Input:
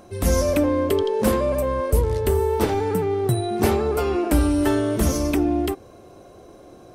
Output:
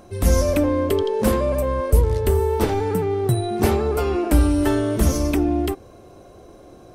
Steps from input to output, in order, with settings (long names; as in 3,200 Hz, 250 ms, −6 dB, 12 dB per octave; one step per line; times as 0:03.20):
low-shelf EQ 76 Hz +7 dB